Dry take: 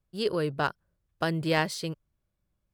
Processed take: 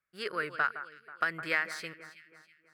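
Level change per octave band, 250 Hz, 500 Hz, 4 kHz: -14.5, -10.5, -7.5 dB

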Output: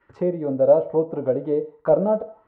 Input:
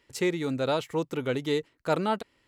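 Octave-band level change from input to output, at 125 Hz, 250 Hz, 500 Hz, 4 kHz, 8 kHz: +3.0 dB, +3.5 dB, +10.0 dB, under -25 dB, under -30 dB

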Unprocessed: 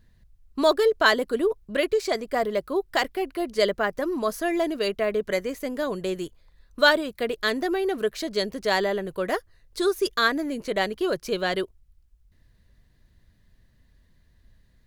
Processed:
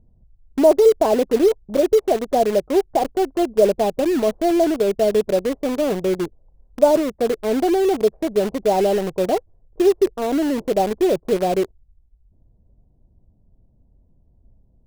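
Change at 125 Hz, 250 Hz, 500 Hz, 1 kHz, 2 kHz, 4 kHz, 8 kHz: +7.5, +8.0, +8.0, +4.5, -9.5, -5.0, +5.5 dB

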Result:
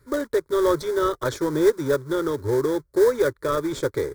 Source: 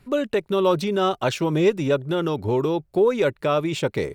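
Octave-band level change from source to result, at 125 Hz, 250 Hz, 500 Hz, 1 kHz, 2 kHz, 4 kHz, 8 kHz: -5.5, -1.5, 0.0, -2.5, -1.5, -6.0, +3.0 dB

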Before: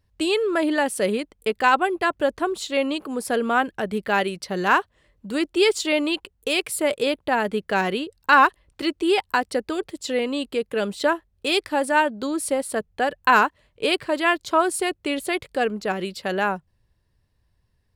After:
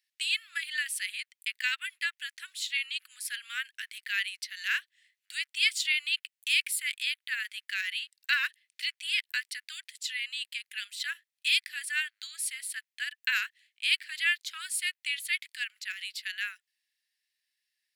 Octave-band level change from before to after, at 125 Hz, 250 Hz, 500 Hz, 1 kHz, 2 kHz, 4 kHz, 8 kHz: under -40 dB, under -40 dB, under -40 dB, -28.5 dB, -5.5 dB, -1.0 dB, -3.0 dB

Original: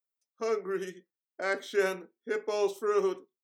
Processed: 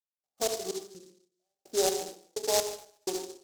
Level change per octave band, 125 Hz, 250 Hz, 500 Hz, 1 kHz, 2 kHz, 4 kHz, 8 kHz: n/a, -3.5 dB, -2.5 dB, -0.5 dB, -10.5 dB, +9.5 dB, +15.5 dB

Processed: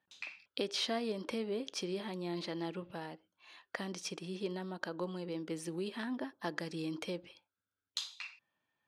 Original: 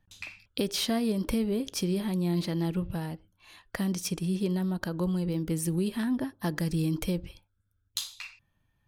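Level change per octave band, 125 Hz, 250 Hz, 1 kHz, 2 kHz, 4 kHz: -16.5, -12.0, -3.0, -3.0, -4.5 dB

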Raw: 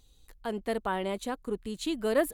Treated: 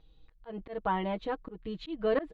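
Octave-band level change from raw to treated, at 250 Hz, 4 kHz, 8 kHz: -3.5 dB, -6.5 dB, under -30 dB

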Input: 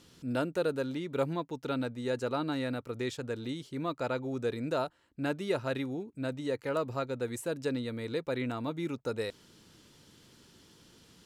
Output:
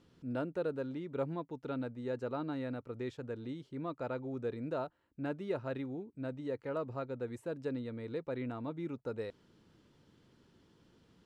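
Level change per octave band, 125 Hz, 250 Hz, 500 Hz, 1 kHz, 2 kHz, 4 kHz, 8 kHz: -4.5 dB, -4.5 dB, -5.0 dB, -6.5 dB, -9.0 dB, -14.0 dB, under -15 dB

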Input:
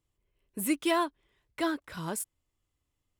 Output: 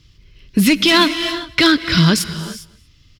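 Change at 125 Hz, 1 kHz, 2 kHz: +27.0, +12.0, +20.5 dB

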